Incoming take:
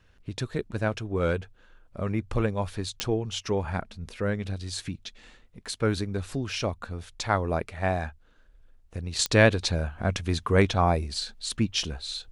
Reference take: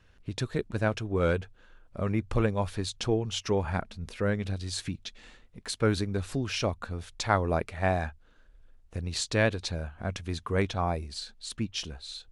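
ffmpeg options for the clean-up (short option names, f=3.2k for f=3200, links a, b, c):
-af "adeclick=t=4,asetnsamples=n=441:p=0,asendcmd='9.19 volume volume -6.5dB',volume=0dB"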